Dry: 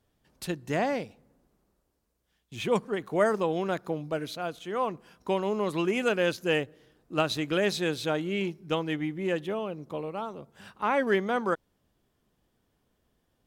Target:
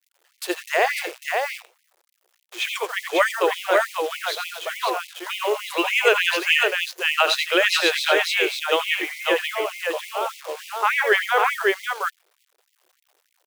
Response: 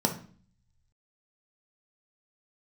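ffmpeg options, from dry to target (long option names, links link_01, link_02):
-filter_complex "[0:a]adynamicequalizer=threshold=0.00631:dfrequency=2400:dqfactor=0.83:tfrequency=2400:tqfactor=0.83:attack=5:release=100:ratio=0.375:range=3:mode=boostabove:tftype=bell,acrossover=split=240[link_01][link_02];[link_01]acontrast=27[link_03];[link_03][link_02]amix=inputs=2:normalize=0,aecho=1:1:75|87|546:0.224|0.355|0.668,acrusher=bits=8:dc=4:mix=0:aa=0.000001,afftfilt=real='re*gte(b*sr/1024,320*pow(2000/320,0.5+0.5*sin(2*PI*3.4*pts/sr)))':imag='im*gte(b*sr/1024,320*pow(2000/320,0.5+0.5*sin(2*PI*3.4*pts/sr)))':win_size=1024:overlap=0.75,volume=7.5dB"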